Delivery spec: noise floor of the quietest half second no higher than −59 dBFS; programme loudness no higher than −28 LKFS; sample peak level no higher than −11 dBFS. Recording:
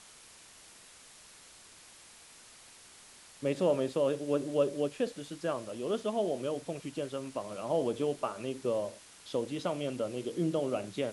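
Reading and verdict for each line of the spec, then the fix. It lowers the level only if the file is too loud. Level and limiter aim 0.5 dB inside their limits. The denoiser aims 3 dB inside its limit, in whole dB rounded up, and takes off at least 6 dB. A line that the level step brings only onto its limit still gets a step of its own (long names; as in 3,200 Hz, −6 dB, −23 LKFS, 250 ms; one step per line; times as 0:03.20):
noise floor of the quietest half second −55 dBFS: out of spec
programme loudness −33.5 LKFS: in spec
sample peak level −16.5 dBFS: in spec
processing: broadband denoise 7 dB, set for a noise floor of −55 dBFS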